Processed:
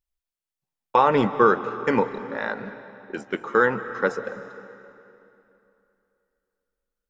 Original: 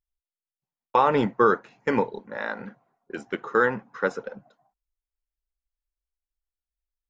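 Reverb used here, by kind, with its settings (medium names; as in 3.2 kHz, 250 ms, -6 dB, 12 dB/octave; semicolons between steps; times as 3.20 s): algorithmic reverb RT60 2.9 s, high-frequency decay 0.85×, pre-delay 115 ms, DRR 12 dB; trim +2 dB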